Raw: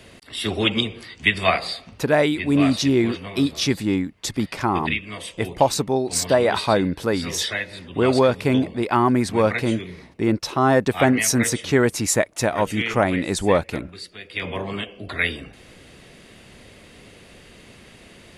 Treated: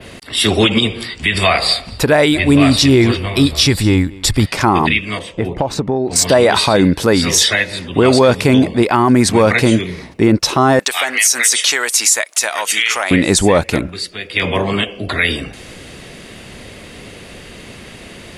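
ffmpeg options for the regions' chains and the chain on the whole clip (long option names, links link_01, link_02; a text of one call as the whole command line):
ffmpeg -i in.wav -filter_complex "[0:a]asettb=1/sr,asplit=3[link_01][link_02][link_03];[link_01]atrim=end=0.734[link_04];[link_02]atrim=start=0.73:end=4.46,asetpts=PTS-STARTPTS,afade=type=in:duration=0.004:curve=qsin,afade=type=out:start_time=3.726:duration=0.004:curve=qsin,bandreject=frequency=6300:width=5.4,asubboost=boost=9:cutoff=76,aecho=1:1:228:0.0668,atrim=end_sample=164493[link_05];[link_03]atrim=start=4.456[link_06];[link_04][link_05]acrossfade=duration=0.004:curve1=hsin:curve2=qsin[link_07];[link_07][link_06]acrossfade=duration=0.004:curve1=qsin:curve2=hsin,asettb=1/sr,asplit=3[link_08][link_09][link_10];[link_08]atrim=end=5.194[link_11];[link_09]atrim=start=5.19:end=6.16,asetpts=PTS-STARTPTS,afade=type=in:duration=0.004:curve=qsin,afade=type=out:start_time=0.966:duration=0.004:curve=qsin,lowpass=frequency=1100:poles=1,acompressor=threshold=-23dB:ratio=10:attack=3.2:release=140:knee=1:detection=peak[link_12];[link_10]atrim=start=6.156[link_13];[link_11][link_12]acrossfade=duration=0.004:curve1=hsin:curve2=qsin[link_14];[link_14][link_13]acrossfade=duration=0.004:curve1=qsin:curve2=hsin,asettb=1/sr,asplit=3[link_15][link_16][link_17];[link_15]atrim=end=10.794[link_18];[link_16]atrim=start=10.79:end=13.11,asetpts=PTS-STARTPTS,afade=type=in:duration=0.004:curve=qsin,afade=type=out:start_time=2.316:duration=0.004:curve=qsin,highpass=630,acompressor=threshold=-27dB:ratio=2.5:attack=3.2:release=140:knee=1:detection=peak,tiltshelf=frequency=1300:gain=-7[link_19];[link_17]atrim=start=13.106[link_20];[link_18][link_19]acrossfade=duration=0.004:curve1=hsin:curve2=qsin[link_21];[link_21][link_20]acrossfade=duration=0.004:curve1=qsin:curve2=hsin,adynamicequalizer=threshold=0.0126:dfrequency=7300:dqfactor=0.7:tfrequency=7300:tqfactor=0.7:attack=5:release=100:ratio=0.375:range=3:mode=boostabove:tftype=bell,alimiter=level_in=12.5dB:limit=-1dB:release=50:level=0:latency=1,volume=-1dB" out.wav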